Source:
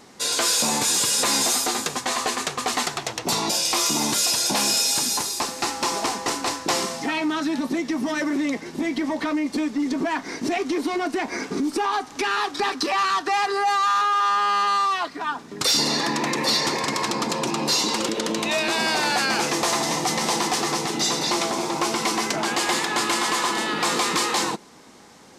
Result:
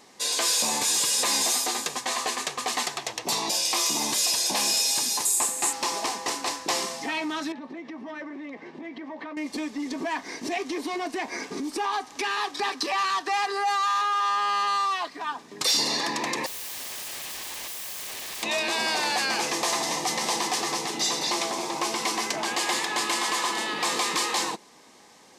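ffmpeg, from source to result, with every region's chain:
-filter_complex "[0:a]asettb=1/sr,asplit=3[a][b][c];[a]atrim=end=5.254[d];[b]atrim=start=5.25:end=5.73,asetpts=PTS-STARTPTS,afade=t=in:d=0.004:c=qsin,afade=t=out:st=0.476:d=0.004:c=qsin,highshelf=f=6.3k:t=q:w=3:g=7.5,bandreject=f=6k:w=25[e];[c]atrim=start=5.726[f];[d][e]acrossfade=d=0.004:c1=hsin:c2=qsin[g];[g][f]acrossfade=d=0.004:c1=qsin:c2=hsin,asettb=1/sr,asplit=3[h][i][j];[h]atrim=end=7.524[k];[i]atrim=start=7.52:end=9.37,asetpts=PTS-STARTPTS,afade=t=in:d=0.004:c=qsin,afade=t=out:st=1.846:d=0.004:c=qsin,highpass=130,lowpass=2.2k,acompressor=threshold=-30dB:ratio=3:attack=3.2:release=140:knee=1:detection=peak[l];[j]atrim=start=9.366[m];[k][l]acrossfade=d=0.004:c1=hsin:c2=qsin[n];[n][m]acrossfade=d=0.004:c1=qsin:c2=hsin,asettb=1/sr,asplit=3[o][p][q];[o]atrim=end=16.464[r];[p]atrim=start=16.46:end=18.43,asetpts=PTS-STARTPTS,afade=t=in:d=0.004:c=qsin,afade=t=out:st=1.966:d=0.004:c=qsin,aeval=exprs='(mod(26.6*val(0)+1,2)-1)/26.6':c=same,acrusher=bits=9:dc=4:mix=0:aa=0.000001[s];[q]atrim=start=18.426[t];[r][s]acrossfade=d=0.004:c1=hsin:c2=qsin[u];[u][t]acrossfade=d=0.004:c1=qsin:c2=hsin,lowshelf=f=290:g=-10.5,bandreject=f=1.4k:w=6.3,volume=-2.5dB"

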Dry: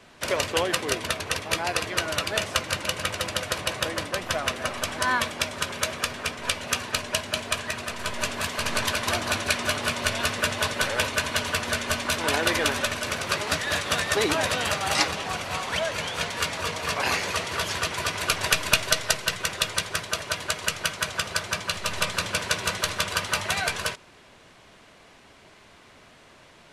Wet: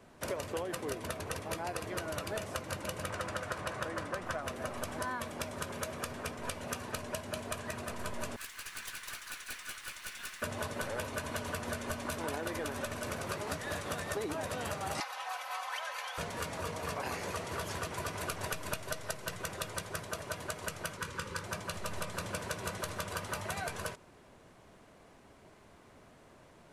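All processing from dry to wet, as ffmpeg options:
-filter_complex "[0:a]asettb=1/sr,asplit=3[a][b][c];[a]atrim=end=3.094[d];[b]atrim=start=3.09:end=4.41,asetpts=PTS-STARTPTS,afade=t=in:d=0.004:c=qsin,afade=t=out:st=1.316:d=0.004:c=qsin,lowpass=10k,equalizer=f=1.4k:t=o:w=1.1:g=7[e];[c]atrim=start=4.406[f];[d][e]acrossfade=d=0.004:c1=hsin:c2=qsin[g];[g][f]acrossfade=d=0.004:c1=qsin:c2=hsin,asettb=1/sr,asplit=3[h][i][j];[h]atrim=end=8.364[k];[i]atrim=start=8.36:end=10.42,asetpts=PTS-STARTPTS,afade=t=in:d=0.004:c=qsin,afade=t=out:st=2.056:d=0.004:c=qsin,highpass=f=1.5k:w=0.5412,highpass=f=1.5k:w=1.3066,aeval=exprs='(tanh(20*val(0)+0.2)-tanh(0.2))/20':c=same,aeval=exprs='sgn(val(0))*max(abs(val(0))-0.00299,0)':c=same[l];[j]atrim=start=10.416[m];[k][l]acrossfade=d=0.004:c1=hsin:c2=qsin[n];[n][m]acrossfade=d=0.004:c1=qsin:c2=hsin,asettb=1/sr,asplit=3[o][p][q];[o]atrim=end=15.004[r];[p]atrim=start=15:end=16.18,asetpts=PTS-STARTPTS,afade=t=in:d=0.004:c=qsin,afade=t=out:st=1.176:d=0.004:c=qsin,highpass=f=790:w=0.5412,highpass=f=790:w=1.3066,equalizer=f=8.1k:t=o:w=0.68:g=-7,aecho=1:1:3.9:0.76,atrim=end_sample=52038[s];[q]atrim=start=16.176[t];[r][s]acrossfade=d=0.004:c1=hsin:c2=qsin[u];[u][t]acrossfade=d=0.004:c1=qsin:c2=hsin,asettb=1/sr,asplit=3[v][w][x];[v]atrim=end=20.974[y];[w]atrim=start=20.97:end=21.44,asetpts=PTS-STARTPTS,afade=t=in:d=0.004:c=qsin,afade=t=out:st=0.466:d=0.004:c=qsin,asuperstop=centerf=700:order=12:qfactor=2.7,highshelf=f=11k:g=-10.5,asplit=2[z][aa];[aa]adelay=23,volume=-10.5dB[ab];[z][ab]amix=inputs=2:normalize=0,atrim=end_sample=20727[ac];[x]atrim=start=21.436[ad];[y][ac]acrossfade=d=0.004:c1=hsin:c2=qsin[ae];[ae][ad]acrossfade=d=0.004:c1=qsin:c2=hsin,equalizer=f=3.4k:t=o:w=2.6:g=-11.5,acompressor=threshold=-31dB:ratio=6,volume=-2.5dB"

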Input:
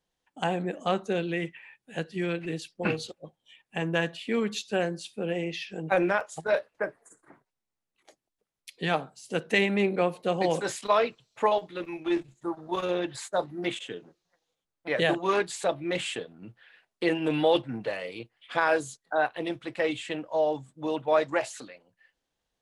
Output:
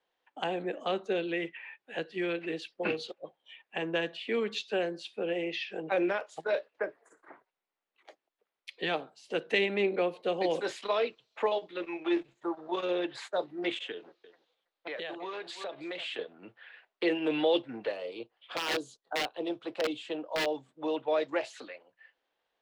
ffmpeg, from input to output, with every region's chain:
-filter_complex "[0:a]asettb=1/sr,asplit=3[a][b][c];[a]atrim=end=13.914[d];[b]atrim=start=13.91:end=16.19,asetpts=PTS-STARTPTS,afade=t=in:d=0.004:c=qsin,afade=t=out:st=2.276:d=0.004:c=qsin,equalizer=f=4k:t=o:w=0.95:g=6,aecho=1:1:327:0.1,atrim=end_sample=100548,acompressor=threshold=-36dB:ratio=6:attack=3.2:release=140:knee=1:detection=peak[e];[c]atrim=start=16.186[f];[d][e]acrossfade=d=0.004:c1=hsin:c2=qsin[g];[g][f]acrossfade=d=0.004:c1=qsin:c2=hsin,asettb=1/sr,asplit=3[h][i][j];[h]atrim=end=17.924[k];[i]atrim=start=17.92:end=20.46,asetpts=PTS-STARTPTS,afade=t=in:d=0.004:c=qsin,afade=t=out:st=2.536:d=0.004:c=qsin,equalizer=f=2k:t=o:w=0.92:g=-13,aeval=exprs='(mod(10.6*val(0)+1,2)-1)/10.6':c=same[l];[j]atrim=start=20.456[m];[k][l]acrossfade=d=0.004:c1=hsin:c2=qsin[n];[n][m]acrossfade=d=0.004:c1=qsin:c2=hsin,acrossover=split=340 3900:gain=0.0794 1 0.0794[o][p][q];[o][p][q]amix=inputs=3:normalize=0,acrossover=split=430|3000[r][s][t];[s]acompressor=threshold=-46dB:ratio=2.5[u];[r][u][t]amix=inputs=3:normalize=0,volume=5dB"

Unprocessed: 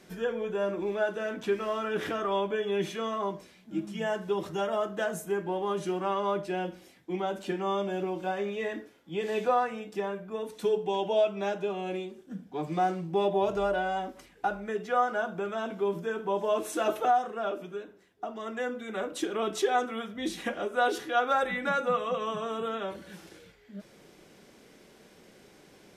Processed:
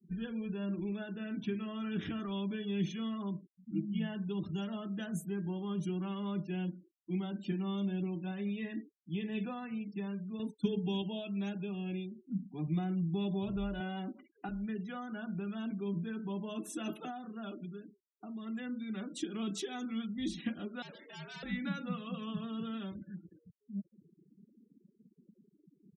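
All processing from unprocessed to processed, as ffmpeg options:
-filter_complex "[0:a]asettb=1/sr,asplit=3[a][b][c];[a]atrim=end=10.394[d];[b]atrim=start=10.39:end=11.02,asetpts=PTS-STARTPTS,afade=t=in:d=0.004:c=qsin,afade=t=out:st=0.626:d=0.004:c=qsin,agate=range=-33dB:threshold=-41dB:ratio=3:release=100:detection=peak,acontrast=24[e];[c]atrim=start=11.016[f];[d][e]acrossfade=d=0.004:c1=hsin:c2=qsin[g];[g][f]acrossfade=d=0.004:c1=qsin:c2=hsin,asettb=1/sr,asplit=3[h][i][j];[h]atrim=end=13.804[k];[i]atrim=start=13.8:end=14.49,asetpts=PTS-STARTPTS,afade=t=in:d=0.004:c=qsin,afade=t=out:st=0.686:d=0.004:c=qsin,acontrast=52,highpass=240,lowpass=3k[l];[j]atrim=start=14.486[m];[k][l]acrossfade=d=0.004:c1=hsin:c2=qsin[n];[n][m]acrossfade=d=0.004:c1=qsin:c2=hsin,asettb=1/sr,asplit=3[o][p][q];[o]atrim=end=20.824[r];[p]atrim=start=20.82:end=21.43,asetpts=PTS-STARTPTS,afade=t=in:d=0.004:c=qsin,afade=t=out:st=0.606:d=0.004:c=qsin,bass=f=250:g=3,treble=f=4k:g=-12,volume=35dB,asoftclip=hard,volume=-35dB,afreqshift=150[s];[q]atrim=start=21.426[t];[r][s]acrossfade=d=0.004:c1=hsin:c2=qsin[u];[u][t]acrossfade=d=0.004:c1=qsin:c2=hsin,afftfilt=real='re*gte(hypot(re,im),0.00891)':imag='im*gte(hypot(re,im),0.00891)':win_size=1024:overlap=0.75,firequalizer=gain_entry='entry(210,0);entry(480,-23);entry(2700,-9)':delay=0.05:min_phase=1,acrossover=split=400|3000[v][w][x];[w]acompressor=threshold=-46dB:ratio=6[y];[v][y][x]amix=inputs=3:normalize=0,volume=4dB"

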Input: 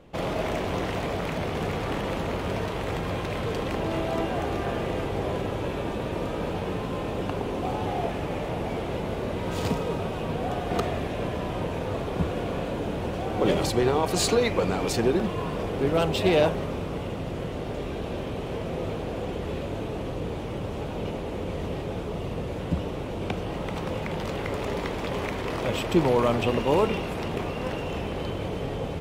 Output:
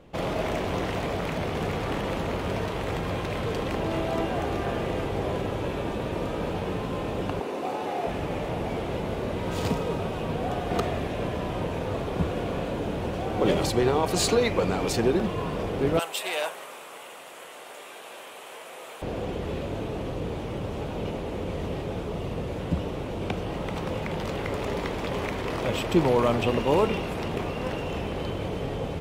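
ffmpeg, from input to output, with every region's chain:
-filter_complex "[0:a]asettb=1/sr,asplit=3[a][b][c];[a]atrim=end=7.404[d];[b]atrim=start=7.4:end=8.07,asetpts=PTS-STARTPTS,afade=t=in:d=0.004:c=qsin,afade=t=out:st=0.666:d=0.004:c=qsin,highpass=290,bandreject=f=3.2k:w=13[e];[c]atrim=start=8.066[f];[d][e]acrossfade=d=0.004:c1=hsin:c2=qsin[g];[g][f]acrossfade=d=0.004:c1=qsin:c2=hsin,asettb=1/sr,asplit=3[h][i][j];[h]atrim=end=15.994[k];[i]atrim=start=15.99:end=19.02,asetpts=PTS-STARTPTS,afade=t=in:d=0.004:c=qsin,afade=t=out:st=3.026:d=0.004:c=qsin,highpass=990,highshelf=f=6.7k:t=q:w=1.5:g=7.5[l];[j]atrim=start=19.016[m];[k][l]acrossfade=d=0.004:c1=hsin:c2=qsin[n];[n][m]acrossfade=d=0.004:c1=qsin:c2=hsin"

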